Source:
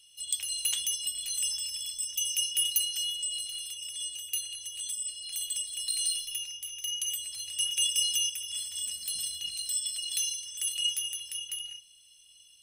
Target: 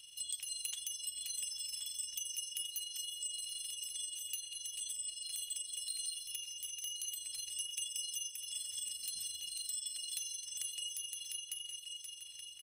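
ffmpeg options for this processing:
-filter_complex "[0:a]asplit=2[a][b];[b]adelay=1076,lowpass=f=5k:p=1,volume=-12.5dB,asplit=2[c][d];[d]adelay=1076,lowpass=f=5k:p=1,volume=0.26,asplit=2[e][f];[f]adelay=1076,lowpass=f=5k:p=1,volume=0.26[g];[a][c][e][g]amix=inputs=4:normalize=0,tremolo=f=23:d=0.519,acrossover=split=3400|6900[h][i][j];[h]acompressor=threshold=-60dB:ratio=4[k];[i]acompressor=threshold=-53dB:ratio=4[l];[j]acompressor=threshold=-50dB:ratio=4[m];[k][l][m]amix=inputs=3:normalize=0,volume=5dB"

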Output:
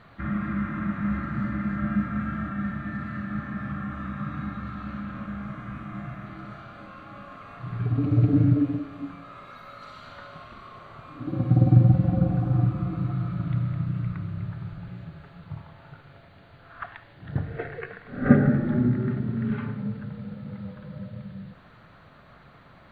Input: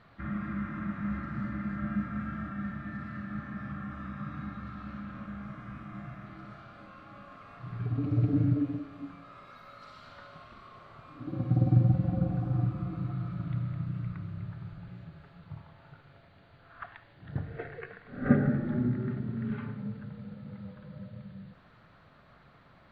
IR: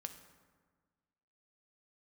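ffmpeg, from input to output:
-af "bandreject=f=5.2k:w=5.3,volume=6.5dB"

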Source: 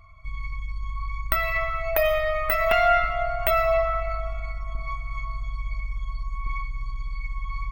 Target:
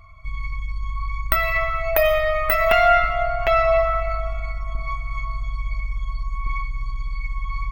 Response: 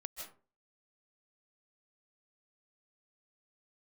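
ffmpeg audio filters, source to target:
-filter_complex "[0:a]asettb=1/sr,asplit=3[a][b][c];[a]atrim=end=3.274[d];[b]atrim=start=3.27:end=3.77,asetpts=PTS-STARTPTS,afade=t=in:d=0.004:c=qsin,afade=t=out:st=0.496:d=0.004:c=qsin,lowpass=6.2k[e];[c]atrim=start=3.766[f];[d][e]acrossfade=d=0.004:c1=hsin:c2=qsin[g];[g][f]acrossfade=d=0.004:c1=qsin:c2=hsin,volume=4dB"

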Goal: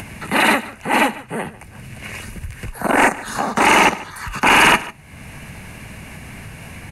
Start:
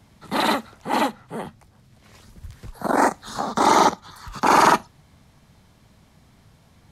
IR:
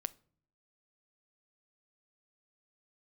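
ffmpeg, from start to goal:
-filter_complex "[0:a]aeval=exprs='0.631*sin(PI/2*2.24*val(0)/0.631)':c=same,acompressor=mode=upward:threshold=-18dB:ratio=2.5,superequalizer=11b=2.24:12b=3.16:13b=0.562:14b=0.631:16b=2,asplit=2[a][b];[b]aecho=0:1:147:0.119[c];[a][c]amix=inputs=2:normalize=0,volume=-5.5dB"

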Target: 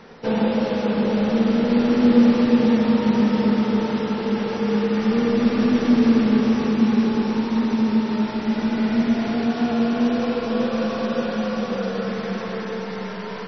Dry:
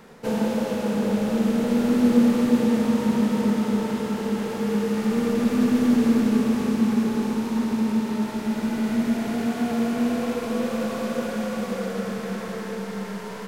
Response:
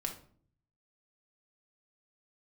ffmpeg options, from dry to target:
-filter_complex "[0:a]bandreject=f=50:t=h:w=6,bandreject=f=100:t=h:w=6,bandreject=f=150:t=h:w=6,bandreject=f=200:t=h:w=6,bandreject=f=250:t=h:w=6,asettb=1/sr,asplit=3[a][b][c];[a]atrim=end=9.434[d];[b]atrim=start=9.43:end=12.08,asetpts=PTS-STARTPTS,afade=t=in:d=0.004:c=qsin,afade=t=out:st=2.646:d=0.004:c=qsin,equalizer=f=2.1k:t=o:w=0.21:g=-5.5[e];[c]atrim=start=12.076[f];[d][e]acrossfade=d=0.004:c1=hsin:c2=qsin[g];[g][f]acrossfade=d=0.004:c1=qsin:c2=hsin,volume=4dB" -ar 24000 -c:a libmp3lame -b:a 24k

